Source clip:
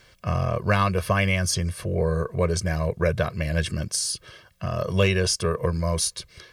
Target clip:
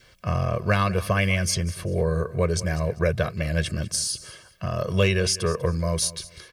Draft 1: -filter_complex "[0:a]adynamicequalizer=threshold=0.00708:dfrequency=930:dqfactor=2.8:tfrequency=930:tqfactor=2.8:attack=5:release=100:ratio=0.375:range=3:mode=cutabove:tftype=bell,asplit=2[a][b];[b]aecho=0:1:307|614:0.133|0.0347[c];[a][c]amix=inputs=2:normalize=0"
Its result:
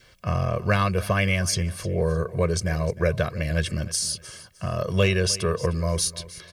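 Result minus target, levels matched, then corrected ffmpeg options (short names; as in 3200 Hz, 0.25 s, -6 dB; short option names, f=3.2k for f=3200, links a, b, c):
echo 0.111 s late
-filter_complex "[0:a]adynamicequalizer=threshold=0.00708:dfrequency=930:dqfactor=2.8:tfrequency=930:tqfactor=2.8:attack=5:release=100:ratio=0.375:range=3:mode=cutabove:tftype=bell,asplit=2[a][b];[b]aecho=0:1:196|392:0.133|0.0347[c];[a][c]amix=inputs=2:normalize=0"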